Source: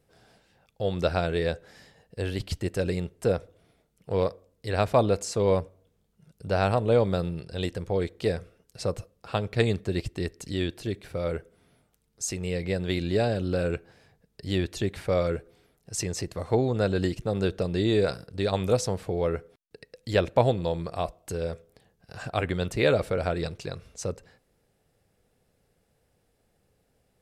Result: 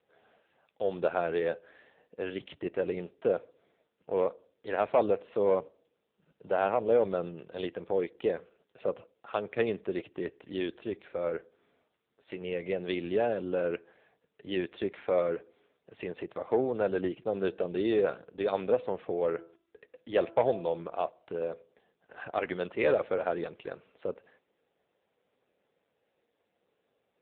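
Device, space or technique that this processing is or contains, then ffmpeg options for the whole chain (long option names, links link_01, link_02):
telephone: -filter_complex "[0:a]asplit=3[link_01][link_02][link_03];[link_01]afade=type=out:start_time=19.37:duration=0.02[link_04];[link_02]bandreject=frequency=333.6:width_type=h:width=4,bandreject=frequency=667.2:width_type=h:width=4,bandreject=frequency=1000.8:width_type=h:width=4,bandreject=frequency=1334.4:width_type=h:width=4,bandreject=frequency=1668:width_type=h:width=4,afade=type=in:start_time=19.37:duration=0.02,afade=type=out:start_time=20.72:duration=0.02[link_05];[link_03]afade=type=in:start_time=20.72:duration=0.02[link_06];[link_04][link_05][link_06]amix=inputs=3:normalize=0,highpass=310,lowpass=3600,asoftclip=type=tanh:threshold=-14dB" -ar 8000 -c:a libopencore_amrnb -b:a 6700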